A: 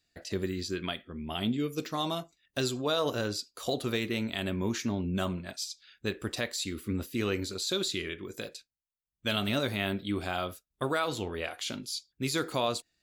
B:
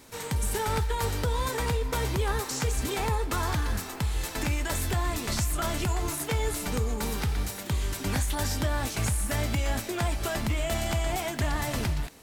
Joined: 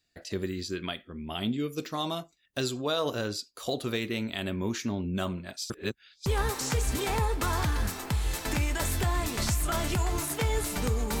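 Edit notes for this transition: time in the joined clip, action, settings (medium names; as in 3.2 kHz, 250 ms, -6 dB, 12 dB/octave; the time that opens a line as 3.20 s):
A
5.70–6.26 s: reverse
6.26 s: go over to B from 2.16 s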